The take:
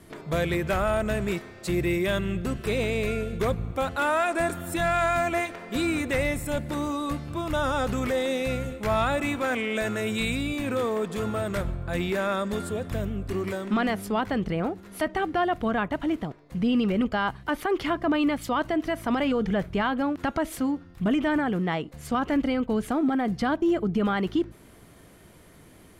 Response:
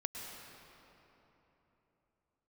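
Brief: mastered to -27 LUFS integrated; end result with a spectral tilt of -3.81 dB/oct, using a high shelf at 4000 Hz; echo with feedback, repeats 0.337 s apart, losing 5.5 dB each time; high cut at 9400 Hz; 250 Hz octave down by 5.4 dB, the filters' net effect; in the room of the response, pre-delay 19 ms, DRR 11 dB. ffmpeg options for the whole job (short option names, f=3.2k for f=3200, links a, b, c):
-filter_complex "[0:a]lowpass=9.4k,equalizer=f=250:t=o:g=-7,highshelf=f=4k:g=3.5,aecho=1:1:337|674|1011|1348|1685|2022|2359:0.531|0.281|0.149|0.079|0.0419|0.0222|0.0118,asplit=2[a][b];[1:a]atrim=start_sample=2205,adelay=19[c];[b][c]afir=irnorm=-1:irlink=0,volume=-11.5dB[d];[a][d]amix=inputs=2:normalize=0"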